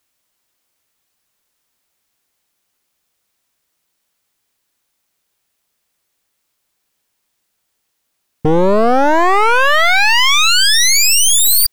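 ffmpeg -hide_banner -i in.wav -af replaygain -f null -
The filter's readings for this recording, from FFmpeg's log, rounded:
track_gain = -6.8 dB
track_peak = 0.245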